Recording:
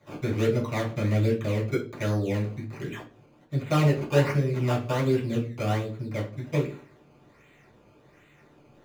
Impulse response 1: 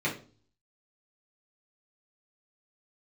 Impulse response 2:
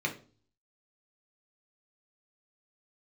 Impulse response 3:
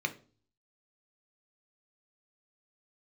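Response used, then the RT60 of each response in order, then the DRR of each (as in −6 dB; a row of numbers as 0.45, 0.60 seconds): 1; 0.40, 0.40, 0.40 seconds; −6.5, 0.5, 6.0 decibels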